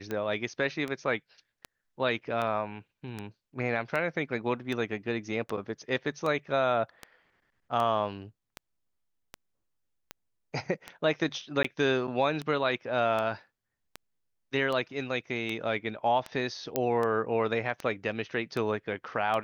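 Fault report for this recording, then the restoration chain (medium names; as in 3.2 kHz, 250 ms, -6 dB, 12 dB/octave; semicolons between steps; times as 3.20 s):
tick 78 rpm -20 dBFS
11.63–11.64 s: dropout 14 ms
16.76 s: pop -12 dBFS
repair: de-click; interpolate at 11.63 s, 14 ms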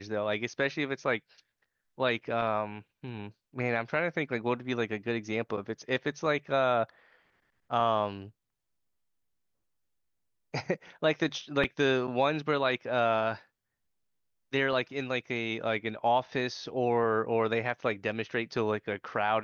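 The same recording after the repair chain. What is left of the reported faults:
16.76 s: pop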